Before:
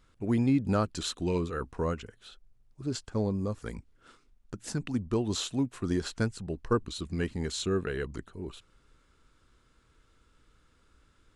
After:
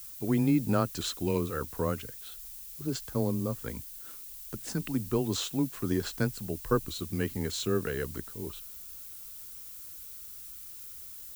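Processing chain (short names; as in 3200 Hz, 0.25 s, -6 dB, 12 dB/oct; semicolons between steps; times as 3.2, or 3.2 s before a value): frequency shift +13 Hz; added noise violet -45 dBFS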